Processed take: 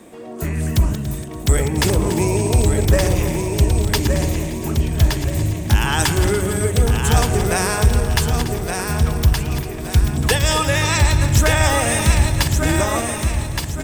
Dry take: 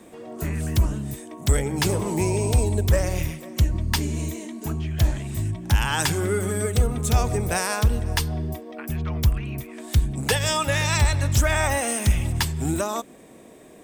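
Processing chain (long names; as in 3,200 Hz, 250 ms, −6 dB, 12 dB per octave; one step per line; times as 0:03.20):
feedback delay that plays each chunk backwards 143 ms, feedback 63%, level −10 dB
repeating echo 1,170 ms, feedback 37%, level −5 dB
level +4 dB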